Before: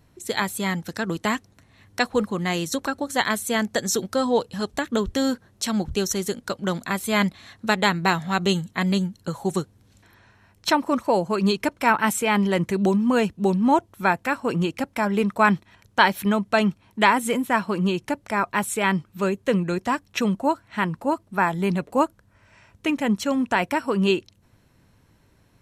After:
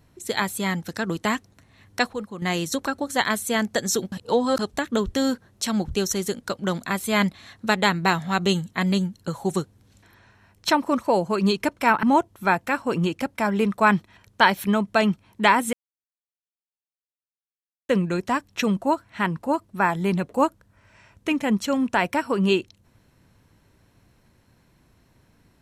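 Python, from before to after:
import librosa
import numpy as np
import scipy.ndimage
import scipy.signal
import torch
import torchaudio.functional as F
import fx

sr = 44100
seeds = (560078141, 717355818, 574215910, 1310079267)

y = fx.edit(x, sr, fx.clip_gain(start_s=2.13, length_s=0.29, db=-9.0),
    fx.reverse_span(start_s=4.12, length_s=0.47),
    fx.cut(start_s=12.03, length_s=1.58),
    fx.silence(start_s=17.31, length_s=2.16), tone=tone)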